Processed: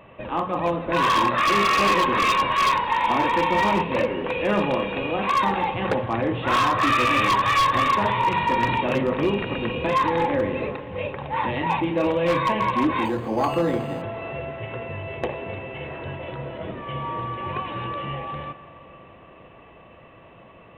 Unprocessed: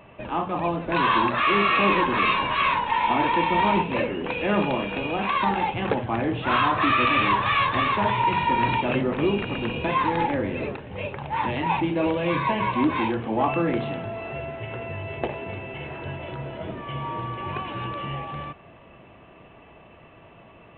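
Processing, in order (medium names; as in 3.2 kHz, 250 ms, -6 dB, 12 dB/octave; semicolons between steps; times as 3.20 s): small resonant body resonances 520/1100/1900/3700 Hz, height 8 dB, ringing for 60 ms; wavefolder -14 dBFS; reverberation RT60 3.9 s, pre-delay 38 ms, DRR 13.5 dB; 13.05–14.02 s: decimation joined by straight lines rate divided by 8×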